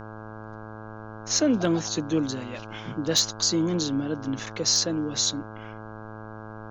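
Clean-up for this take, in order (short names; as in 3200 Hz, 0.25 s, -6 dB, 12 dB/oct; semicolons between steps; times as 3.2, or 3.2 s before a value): clip repair -13 dBFS; de-hum 108.9 Hz, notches 15; expander -32 dBFS, range -21 dB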